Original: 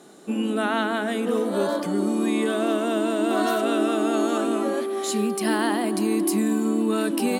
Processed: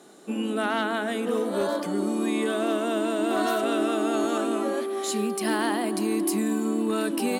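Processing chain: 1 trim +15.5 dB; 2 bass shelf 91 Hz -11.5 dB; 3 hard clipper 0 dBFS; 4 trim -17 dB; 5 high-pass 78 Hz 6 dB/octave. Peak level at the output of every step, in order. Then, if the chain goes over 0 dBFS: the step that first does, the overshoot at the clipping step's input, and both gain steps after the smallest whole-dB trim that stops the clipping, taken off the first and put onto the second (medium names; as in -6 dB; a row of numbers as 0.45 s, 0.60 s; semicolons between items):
+7.0 dBFS, +7.0 dBFS, 0.0 dBFS, -17.0 dBFS, -15.5 dBFS; step 1, 7.0 dB; step 1 +8.5 dB, step 4 -10 dB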